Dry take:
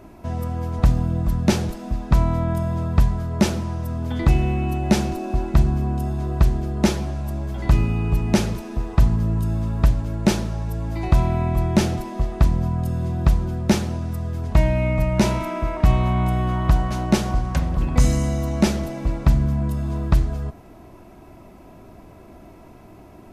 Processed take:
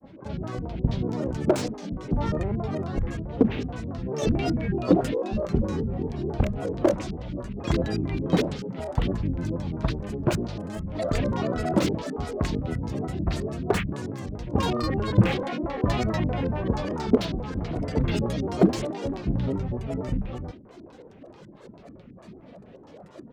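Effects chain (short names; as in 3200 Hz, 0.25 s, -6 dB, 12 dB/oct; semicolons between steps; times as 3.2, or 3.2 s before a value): HPF 210 Hz 6 dB/oct; LFO low-pass square 4.6 Hz 360–4200 Hz; grains 0.107 s, grains 20/s, spray 11 ms, pitch spread up and down by 12 st; bands offset in time lows, highs 40 ms, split 1300 Hz; slew limiter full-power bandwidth 120 Hz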